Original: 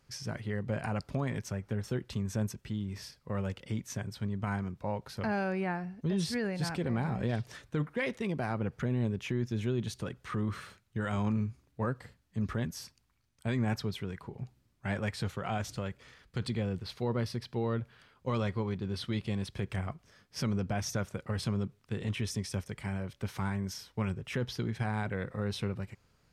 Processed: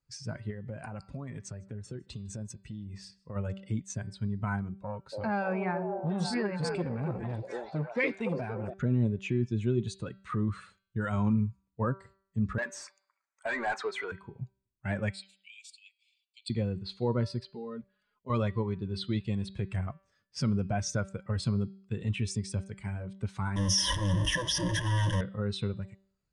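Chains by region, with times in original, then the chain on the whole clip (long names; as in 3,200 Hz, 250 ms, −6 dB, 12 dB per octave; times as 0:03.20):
0:00.50–0:03.36: downward compressor 10 to 1, threshold −34 dBFS + single-tap delay 155 ms −18 dB
0:04.83–0:08.74: dynamic equaliser 2,300 Hz, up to +4 dB, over −56 dBFS, Q 5.3 + echo through a band-pass that steps 287 ms, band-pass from 440 Hz, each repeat 0.7 octaves, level −0.5 dB + saturating transformer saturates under 640 Hz
0:12.58–0:14.12: high-pass filter 570 Hz + flat-topped bell 3,600 Hz −9 dB 1.1 octaves + mid-hump overdrive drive 25 dB, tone 2,000 Hz, clips at −25 dBFS
0:15.13–0:16.50: Chebyshev high-pass filter 2,300 Hz, order 6 + parametric band 6,300 Hz −8 dB 0.31 octaves
0:17.45–0:18.30: comb filter 4.8 ms, depth 84% + output level in coarse steps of 13 dB
0:23.56–0:25.21: sign of each sample alone + EQ curve with evenly spaced ripples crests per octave 1.2, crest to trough 16 dB
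whole clip: spectral dynamics exaggerated over time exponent 1.5; Butterworth low-pass 9,600 Hz 48 dB per octave; hum removal 193.7 Hz, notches 26; level +5.5 dB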